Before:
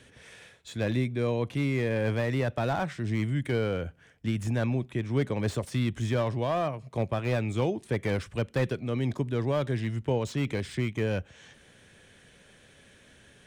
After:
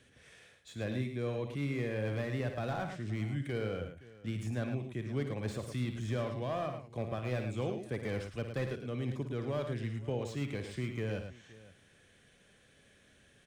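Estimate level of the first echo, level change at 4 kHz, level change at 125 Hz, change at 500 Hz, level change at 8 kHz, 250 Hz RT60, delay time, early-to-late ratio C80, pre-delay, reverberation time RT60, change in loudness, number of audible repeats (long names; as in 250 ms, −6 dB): −10.0 dB, −7.5 dB, −7.5 dB, −7.5 dB, −7.5 dB, no reverb audible, 56 ms, no reverb audible, no reverb audible, no reverb audible, −7.5 dB, 3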